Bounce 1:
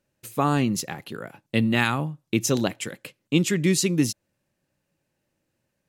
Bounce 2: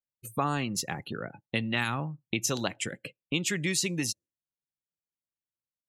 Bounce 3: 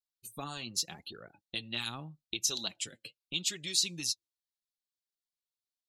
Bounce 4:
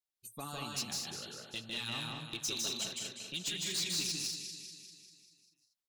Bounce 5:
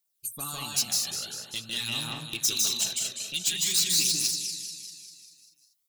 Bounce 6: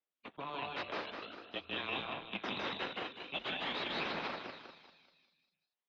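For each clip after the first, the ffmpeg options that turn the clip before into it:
-filter_complex "[0:a]afftdn=nr=34:nf=-43,lowshelf=f=170:g=6.5,acrossover=split=670|7200[a][b][c];[a]acompressor=threshold=-33dB:ratio=4[d];[b]acompressor=threshold=-27dB:ratio=4[e];[c]acompressor=threshold=-36dB:ratio=4[f];[d][e][f]amix=inputs=3:normalize=0"
-af "equalizer=f=125:t=o:w=1:g=-11,equalizer=f=250:t=o:w=1:g=-6,equalizer=f=500:t=o:w=1:g=-8,equalizer=f=1k:t=o:w=1:g=-6,equalizer=f=2k:t=o:w=1:g=-12,equalizer=f=4k:t=o:w=1:g=11,flanger=delay=1.5:depth=7.9:regen=30:speed=0.82:shape=triangular"
-filter_complex "[0:a]asplit=2[a][b];[b]aecho=0:1:197|394|591|788|985|1182|1379:0.299|0.173|0.1|0.0582|0.0338|0.0196|0.0114[c];[a][c]amix=inputs=2:normalize=0,asoftclip=type=tanh:threshold=-28dB,asplit=2[d][e];[e]aecho=0:1:154.5|192.4|233.2:0.794|0.447|0.447[f];[d][f]amix=inputs=2:normalize=0,volume=-2.5dB"
-af "crystalizer=i=3:c=0,aphaser=in_gain=1:out_gain=1:delay=1.7:decay=0.36:speed=0.47:type=triangular,volume=1.5dB"
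-af "aeval=exprs='0.299*(cos(1*acos(clip(val(0)/0.299,-1,1)))-cos(1*PI/2))+0.0531*(cos(8*acos(clip(val(0)/0.299,-1,1)))-cos(8*PI/2))':c=same,highpass=f=370:t=q:w=0.5412,highpass=f=370:t=q:w=1.307,lowpass=f=3.5k:t=q:w=0.5176,lowpass=f=3.5k:t=q:w=0.7071,lowpass=f=3.5k:t=q:w=1.932,afreqshift=-140,highshelf=f=2.4k:g=-11"

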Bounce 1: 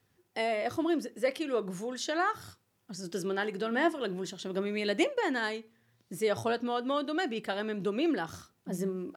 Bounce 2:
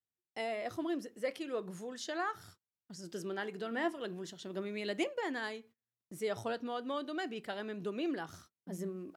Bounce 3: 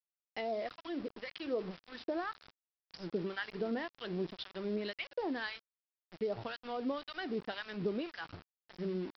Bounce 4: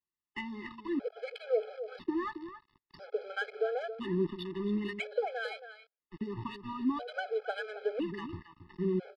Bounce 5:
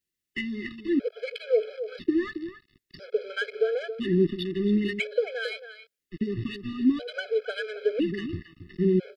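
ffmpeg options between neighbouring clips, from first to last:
-af "agate=range=-25dB:threshold=-52dB:ratio=16:detection=peak,volume=-7dB"
-filter_complex "[0:a]acompressor=threshold=-39dB:ratio=20,acrossover=split=1000[a][b];[a]aeval=exprs='val(0)*(1-1/2+1/2*cos(2*PI*1.9*n/s))':c=same[c];[b]aeval=exprs='val(0)*(1-1/2-1/2*cos(2*PI*1.9*n/s))':c=same[d];[c][d]amix=inputs=2:normalize=0,aresample=11025,aeval=exprs='val(0)*gte(abs(val(0)),0.00168)':c=same,aresample=44100,volume=9.5dB"
-filter_complex "[0:a]aecho=1:1:273:0.282,acrossover=split=330[a][b];[b]adynamicsmooth=sensitivity=3.5:basefreq=2.4k[c];[a][c]amix=inputs=2:normalize=0,afftfilt=real='re*gt(sin(2*PI*0.5*pts/sr)*(1-2*mod(floor(b*sr/1024/430),2)),0)':imag='im*gt(sin(2*PI*0.5*pts/sr)*(1-2*mod(floor(b*sr/1024/430),2)),0)':win_size=1024:overlap=0.75,volume=7dB"
-af "asuperstop=centerf=920:order=4:qfactor=0.81,volume=9dB"

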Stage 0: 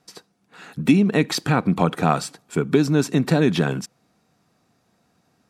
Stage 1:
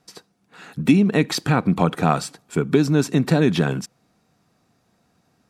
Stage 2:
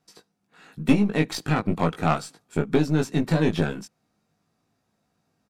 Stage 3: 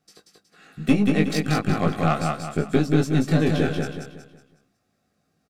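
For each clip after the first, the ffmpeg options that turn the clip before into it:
-af "lowshelf=f=89:g=5"
-filter_complex "[0:a]aeval=exprs='0.708*(cos(1*acos(clip(val(0)/0.708,-1,1)))-cos(1*PI/2))+0.0562*(cos(3*acos(clip(val(0)/0.708,-1,1)))-cos(3*PI/2))+0.0708*(cos(4*acos(clip(val(0)/0.708,-1,1)))-cos(4*PI/2))+0.0282*(cos(7*acos(clip(val(0)/0.708,-1,1)))-cos(7*PI/2))':c=same,asplit=2[a][b];[b]adelay=19,volume=-4dB[c];[a][c]amix=inputs=2:normalize=0,volume=-3.5dB"
-filter_complex "[0:a]asuperstop=centerf=940:order=8:qfactor=5.5,asplit=2[a][b];[b]aecho=0:1:184|368|552|736|920:0.668|0.254|0.0965|0.0367|0.0139[c];[a][c]amix=inputs=2:normalize=0"

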